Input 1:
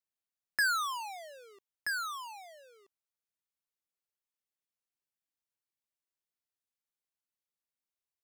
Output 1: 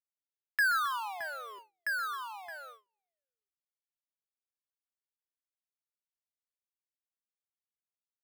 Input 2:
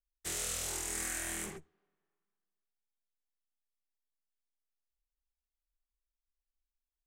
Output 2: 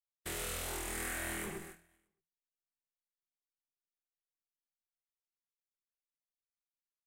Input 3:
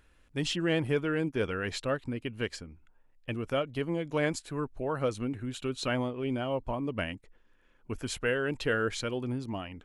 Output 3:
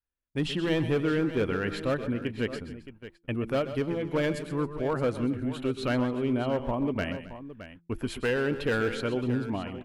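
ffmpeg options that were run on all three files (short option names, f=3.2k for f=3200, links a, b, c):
-filter_complex "[0:a]equalizer=f=6.5k:t=o:w=1.2:g=-12.5,asoftclip=type=hard:threshold=-25dB,asplit=2[a][b];[b]aecho=0:1:124|129|269|619:0.133|0.237|0.106|0.224[c];[a][c]amix=inputs=2:normalize=0,adynamicequalizer=threshold=0.00562:dfrequency=250:dqfactor=1:tfrequency=250:tqfactor=1:attack=5:release=100:ratio=0.375:range=1.5:mode=boostabove:tftype=bell,agate=range=-32dB:threshold=-51dB:ratio=16:detection=peak,bandreject=f=169.8:t=h:w=4,bandreject=f=339.6:t=h:w=4,volume=2.5dB"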